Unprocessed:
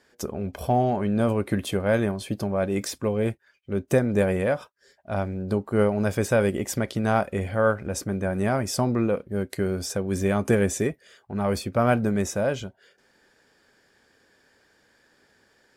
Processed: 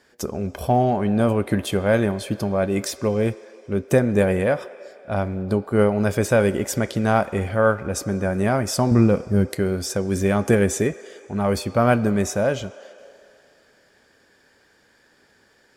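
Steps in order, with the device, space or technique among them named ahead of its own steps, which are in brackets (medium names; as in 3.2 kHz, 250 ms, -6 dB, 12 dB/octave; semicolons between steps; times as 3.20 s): filtered reverb send (on a send: high-pass 370 Hz 24 dB/octave + low-pass 6.2 kHz 12 dB/octave + reverberation RT60 2.7 s, pre-delay 22 ms, DRR 15 dB); 8.91–9.55 s: on the sum: tone controls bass +9 dB, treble +2 dB; trim +3.5 dB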